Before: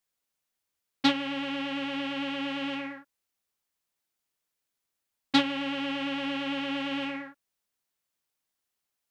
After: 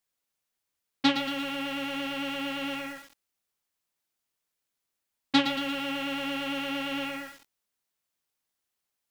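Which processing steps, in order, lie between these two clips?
feedback echo at a low word length 114 ms, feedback 55%, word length 7 bits, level −7.5 dB

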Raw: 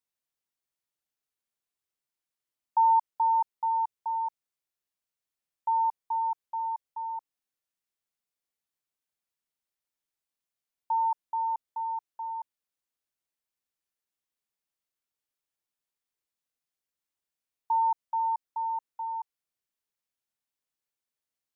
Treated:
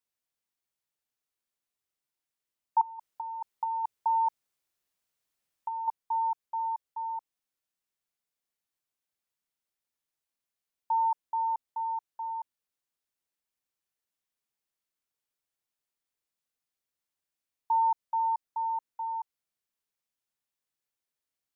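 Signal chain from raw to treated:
0:02.81–0:05.88: compressor whose output falls as the input rises −30 dBFS, ratio −0.5

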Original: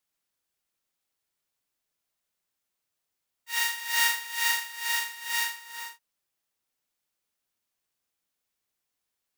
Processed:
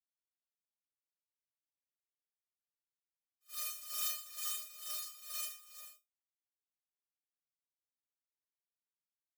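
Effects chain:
gate on every frequency bin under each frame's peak −25 dB weak
tuned comb filter 610 Hz, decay 0.2 s, harmonics all, mix 100%
echo ahead of the sound 76 ms −23.5 dB
level +12 dB

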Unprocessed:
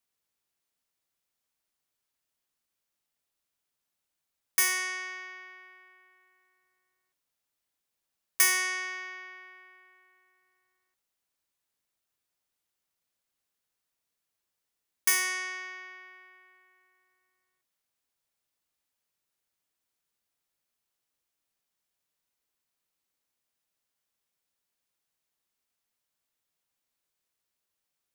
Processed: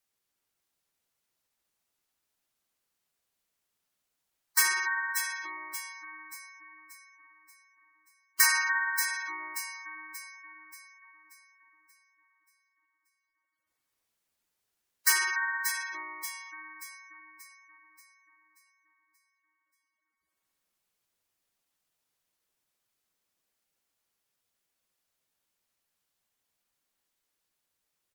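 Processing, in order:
pitch-shifted copies added −12 semitones −14 dB, −3 semitones 0 dB
delay that swaps between a low-pass and a high-pass 291 ms, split 2,000 Hz, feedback 68%, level −4 dB
gate on every frequency bin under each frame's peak −15 dB strong
level −1.5 dB

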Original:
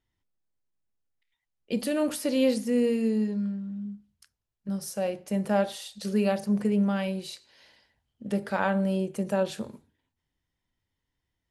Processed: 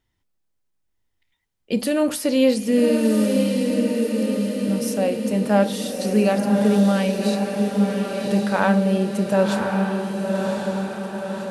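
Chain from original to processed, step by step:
feedback delay with all-pass diffusion 1,085 ms, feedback 60%, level −3.5 dB
level +6.5 dB

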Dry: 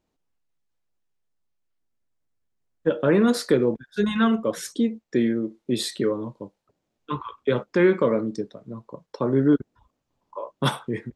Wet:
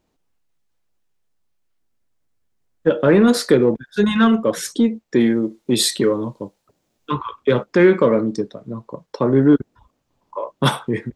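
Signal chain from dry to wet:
in parallel at −9.5 dB: soft clipping −21.5 dBFS, distortion −8 dB
0:05.20–0:07.11: on the sum: high-shelf EQ 4,500 Hz +8 dB
level +4.5 dB

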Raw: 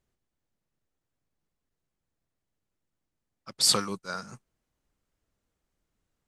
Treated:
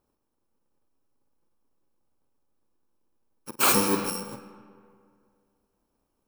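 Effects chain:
samples in bit-reversed order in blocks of 64 samples
on a send: flutter between parallel walls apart 8.2 metres, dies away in 0.21 s
on the sum: comb and all-pass reverb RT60 2.3 s, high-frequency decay 0.55×, pre-delay 80 ms, DRR 13.5 dB
soft clipping −18.5 dBFS, distortion −12 dB
flat-topped bell 550 Hz +12 dB 2.9 octaves
0:03.59–0:04.10: power curve on the samples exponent 0.7

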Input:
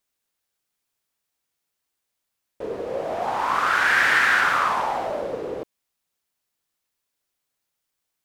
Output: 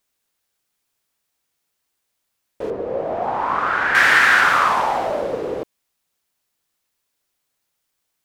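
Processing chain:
0:02.70–0:03.95: low-pass filter 1,000 Hz 6 dB per octave
level +5 dB

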